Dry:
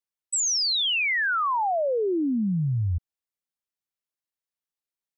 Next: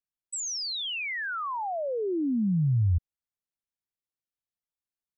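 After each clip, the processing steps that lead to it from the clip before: bass shelf 290 Hz +11.5 dB; trim -8.5 dB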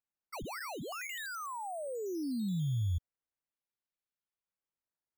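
decimation with a swept rate 9×, swing 100% 0.44 Hz; trim -8.5 dB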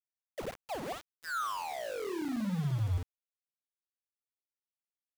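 flutter echo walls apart 9.3 m, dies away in 0.43 s; low-pass sweep 510 Hz -> 2 kHz, 0.35–1.74 s; small samples zeroed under -38 dBFS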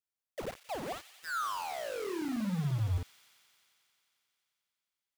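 feedback echo behind a high-pass 89 ms, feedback 84%, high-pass 2.5 kHz, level -10 dB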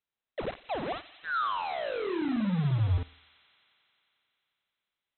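brick-wall FIR low-pass 4.1 kHz; on a send at -20 dB: reverberation, pre-delay 51 ms; on the sum: trim +5 dB

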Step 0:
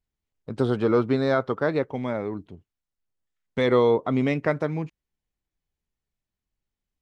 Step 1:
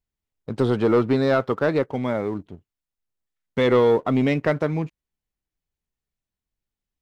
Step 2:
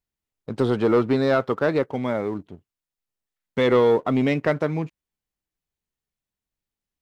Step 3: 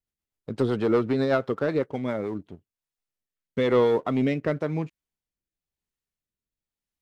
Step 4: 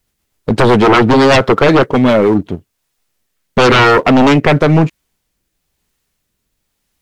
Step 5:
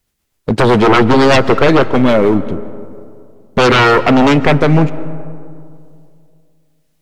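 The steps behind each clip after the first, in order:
waveshaping leveller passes 1
bass shelf 86 Hz -6.5 dB
rotary cabinet horn 8 Hz, later 1 Hz, at 1.90 s; trim -1.5 dB
sine folder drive 13 dB, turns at -10 dBFS; trim +5.5 dB
reverberation RT60 2.4 s, pre-delay 105 ms, DRR 15 dB; trim -1 dB

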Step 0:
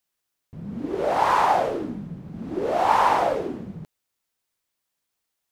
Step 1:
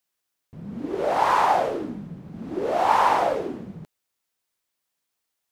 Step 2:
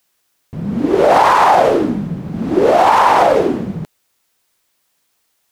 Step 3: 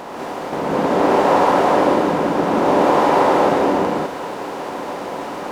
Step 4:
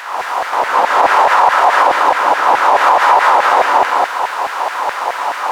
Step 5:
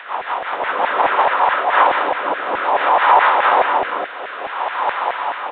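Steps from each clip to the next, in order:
bass shelf 140 Hz -5 dB
loudness maximiser +16 dB; trim -1 dB
spectral levelling over time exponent 0.2; gated-style reverb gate 230 ms rising, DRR -4.5 dB; trim -17 dB
LFO high-pass saw down 4.7 Hz 730–1800 Hz; peak limiter -9 dBFS, peak gain reduction 9.5 dB; trim +8 dB
rotary cabinet horn 5.5 Hz, later 0.6 Hz, at 1.09 s; resampled via 8 kHz; trim -1 dB

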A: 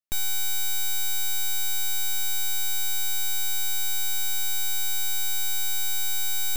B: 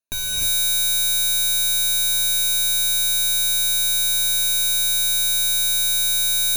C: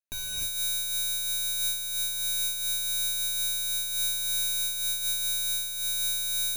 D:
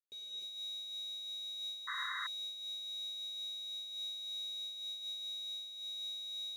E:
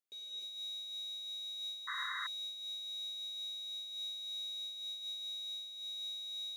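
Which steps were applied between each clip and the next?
rippled EQ curve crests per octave 1.5, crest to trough 14 dB; gated-style reverb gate 340 ms rising, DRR -3.5 dB
in parallel at -10.5 dB: saturation -25 dBFS, distortion -9 dB; on the sum: random flutter of the level, depth 60%; trim -8 dB
two resonant band-passes 1.3 kHz, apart 2.9 oct; painted sound noise, 1.87–2.27 s, 1–2.1 kHz -37 dBFS; trim -4 dB
tone controls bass -9 dB, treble 0 dB

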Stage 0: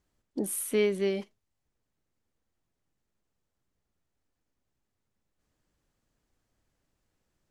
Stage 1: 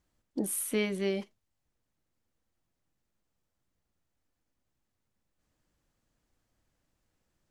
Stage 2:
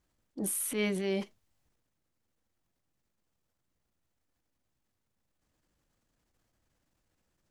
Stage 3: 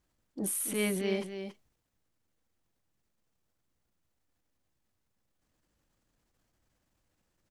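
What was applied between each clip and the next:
band-stop 410 Hz, Q 12
transient shaper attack -9 dB, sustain +6 dB
delay 281 ms -8.5 dB

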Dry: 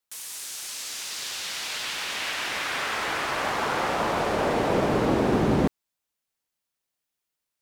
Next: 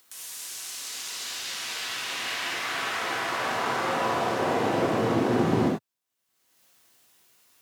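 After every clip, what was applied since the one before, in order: gated-style reverb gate 120 ms flat, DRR -4.5 dB; upward compressor, threshold -34 dBFS; high-pass 100 Hz 24 dB/octave; trim -7 dB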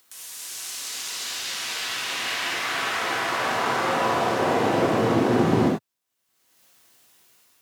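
level rider gain up to 3.5 dB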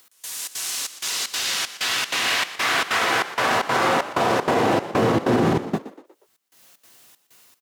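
trance gate "x..xxx.xxx" 191 bpm -24 dB; peak limiter -16.5 dBFS, peak gain reduction 10 dB; frequency-shifting echo 120 ms, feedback 42%, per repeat +52 Hz, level -14.5 dB; trim +6 dB

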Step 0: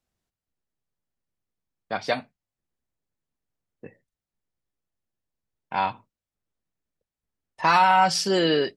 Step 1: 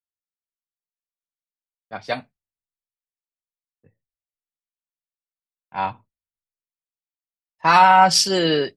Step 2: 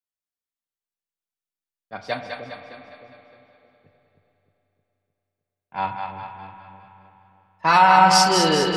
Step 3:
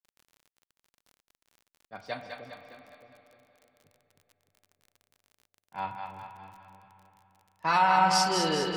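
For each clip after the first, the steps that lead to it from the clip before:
three bands expanded up and down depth 100%; trim +1 dB
two-band feedback delay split 520 Hz, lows 309 ms, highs 204 ms, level -5 dB; spring tank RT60 3.4 s, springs 32/41 ms, chirp 60 ms, DRR 6.5 dB; trim -2 dB
crackle 37 per s -36 dBFS; trim -9 dB

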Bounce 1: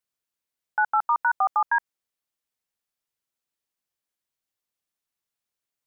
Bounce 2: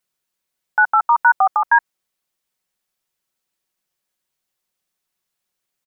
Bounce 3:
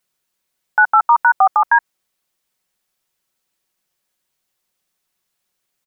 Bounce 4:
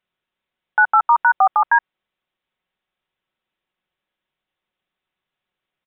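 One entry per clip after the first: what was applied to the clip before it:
comb 5.4 ms, depth 38%; trim +7.5 dB
peak limiter -8.5 dBFS, peak gain reduction 4.5 dB; trim +4.5 dB
resampled via 8 kHz; trim -2 dB

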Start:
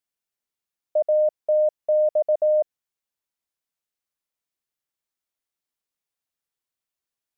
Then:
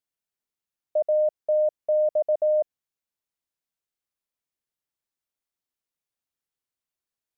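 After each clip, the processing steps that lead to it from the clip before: bass shelf 450 Hz +3.5 dB; trim -3.5 dB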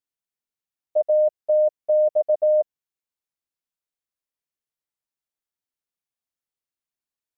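level held to a coarse grid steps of 11 dB; trim +5 dB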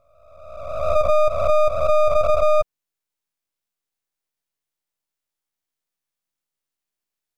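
reverse spectral sustain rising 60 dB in 1.25 s; half-wave rectifier; trim +6 dB

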